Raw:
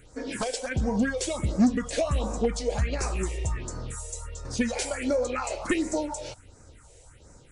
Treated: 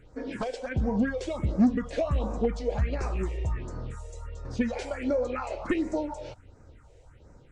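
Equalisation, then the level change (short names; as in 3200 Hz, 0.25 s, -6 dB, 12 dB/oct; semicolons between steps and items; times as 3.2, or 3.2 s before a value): tape spacing loss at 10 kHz 24 dB; 0.0 dB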